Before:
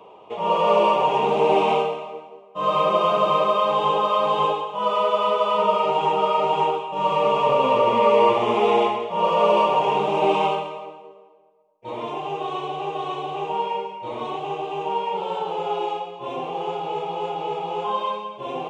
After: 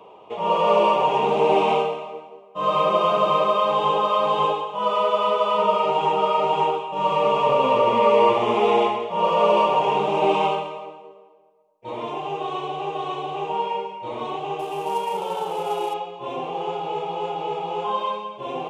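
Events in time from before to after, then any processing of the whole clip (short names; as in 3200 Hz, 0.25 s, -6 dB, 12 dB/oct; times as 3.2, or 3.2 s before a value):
14.59–15.94 CVSD 64 kbps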